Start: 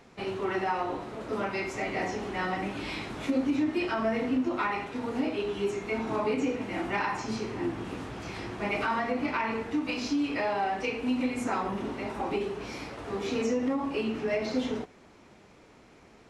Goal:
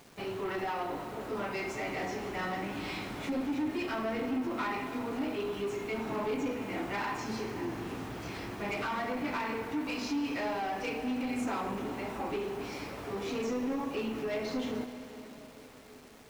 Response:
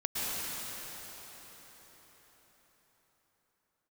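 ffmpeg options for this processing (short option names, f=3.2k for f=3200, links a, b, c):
-filter_complex "[0:a]acrusher=bits=8:mix=0:aa=0.000001,asoftclip=type=tanh:threshold=-27dB,asplit=2[a][b];[1:a]atrim=start_sample=2205,adelay=7[c];[b][c]afir=irnorm=-1:irlink=0,volume=-17dB[d];[a][d]amix=inputs=2:normalize=0,volume=-2dB"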